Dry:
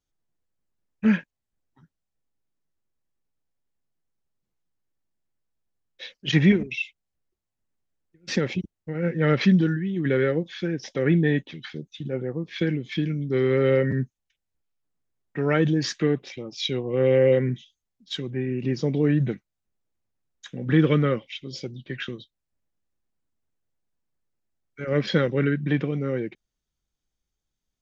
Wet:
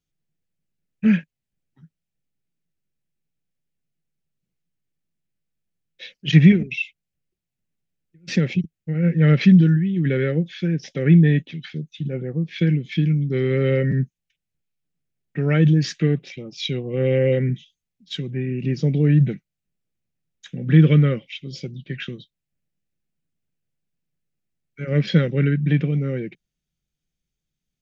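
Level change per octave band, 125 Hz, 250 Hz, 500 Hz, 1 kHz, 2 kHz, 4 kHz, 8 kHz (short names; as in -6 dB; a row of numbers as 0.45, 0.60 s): +8.0 dB, +4.5 dB, -1.0 dB, -4.5 dB, +0.5 dB, +0.5 dB, n/a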